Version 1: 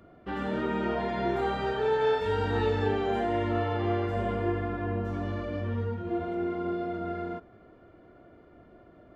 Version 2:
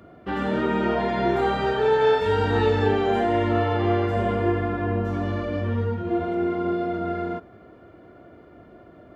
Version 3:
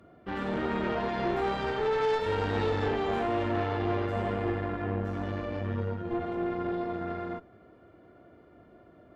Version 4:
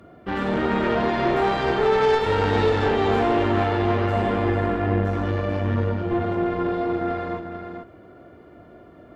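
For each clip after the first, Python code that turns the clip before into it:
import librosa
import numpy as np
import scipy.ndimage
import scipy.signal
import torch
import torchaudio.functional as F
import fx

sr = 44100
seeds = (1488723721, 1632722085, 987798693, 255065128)

y1 = scipy.signal.sosfilt(scipy.signal.butter(2, 57.0, 'highpass', fs=sr, output='sos'), x)
y1 = y1 * 10.0 ** (6.5 / 20.0)
y2 = fx.tube_stage(y1, sr, drive_db=20.0, bias=0.8)
y2 = y2 * 10.0 ** (-2.5 / 20.0)
y3 = y2 + 10.0 ** (-7.5 / 20.0) * np.pad(y2, (int(441 * sr / 1000.0), 0))[:len(y2)]
y3 = y3 * 10.0 ** (8.0 / 20.0)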